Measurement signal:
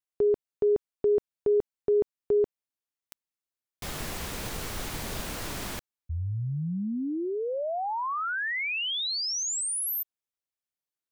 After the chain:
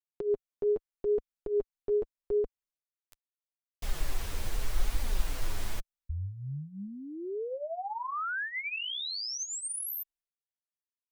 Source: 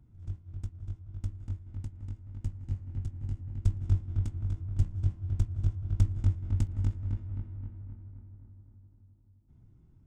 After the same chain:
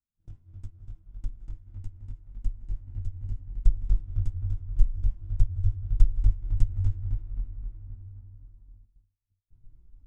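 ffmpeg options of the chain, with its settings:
ffmpeg -i in.wav -af "flanger=delay=3.4:depth=7.1:regen=7:speed=0.8:shape=triangular,asubboost=boost=11:cutoff=52,agate=range=-32dB:threshold=-45dB:ratio=3:release=249:detection=rms,volume=-2.5dB" out.wav

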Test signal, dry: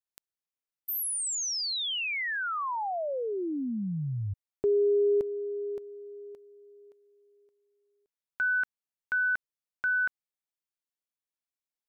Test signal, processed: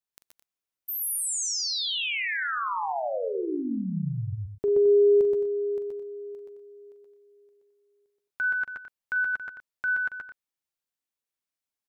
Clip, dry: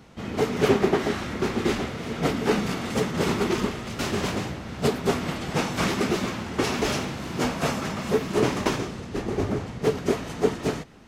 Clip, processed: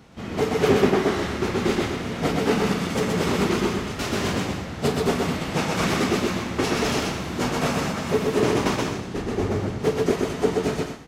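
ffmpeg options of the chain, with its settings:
ffmpeg -i in.wav -af "aecho=1:1:42|125|136|216|245:0.282|0.708|0.299|0.266|0.15" out.wav

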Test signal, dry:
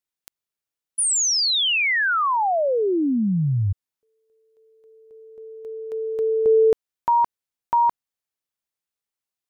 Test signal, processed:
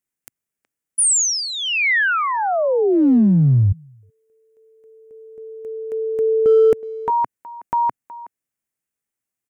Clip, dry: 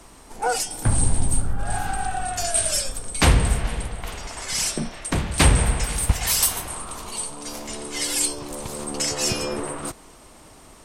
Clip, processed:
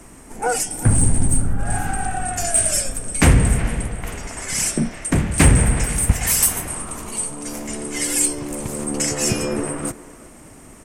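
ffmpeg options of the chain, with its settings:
ffmpeg -i in.wav -filter_complex "[0:a]equalizer=frequency=125:width_type=o:width=1:gain=4,equalizer=frequency=250:width_type=o:width=1:gain=5,equalizer=frequency=1000:width_type=o:width=1:gain=-4,equalizer=frequency=2000:width_type=o:width=1:gain=4,equalizer=frequency=4000:width_type=o:width=1:gain=-11,equalizer=frequency=8000:width_type=o:width=1:gain=4,asplit=2[link_01][link_02];[link_02]adelay=370,highpass=300,lowpass=3400,asoftclip=type=hard:threshold=-12dB,volume=-17dB[link_03];[link_01][link_03]amix=inputs=2:normalize=0,asplit=2[link_04][link_05];[link_05]asoftclip=type=hard:threshold=-15dB,volume=-8dB[link_06];[link_04][link_06]amix=inputs=2:normalize=0" out.wav

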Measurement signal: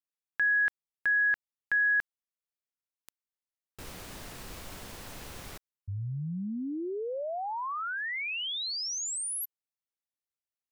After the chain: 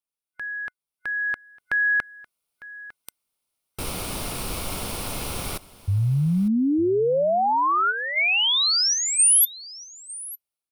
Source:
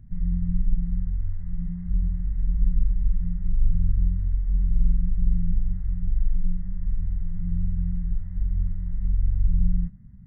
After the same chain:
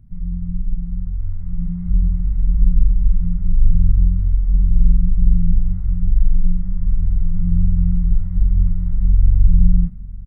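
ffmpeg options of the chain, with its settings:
ffmpeg -i in.wav -af "superequalizer=11b=0.398:15b=0.631:16b=1.78,dynaudnorm=framelen=990:gausssize=3:maxgain=13.5dB,aecho=1:1:903:0.112" out.wav

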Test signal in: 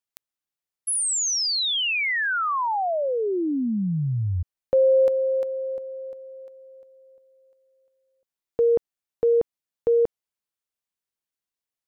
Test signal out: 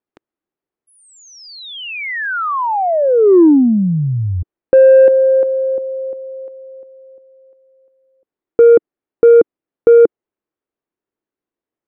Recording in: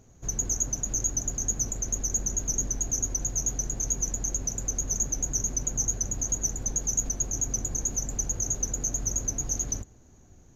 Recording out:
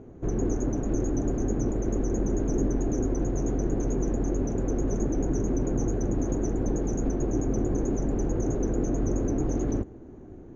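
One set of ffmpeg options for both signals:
ffmpeg -i in.wav -af "lowpass=1800,equalizer=frequency=340:width_type=o:width=1.3:gain=14,acontrast=30" out.wav

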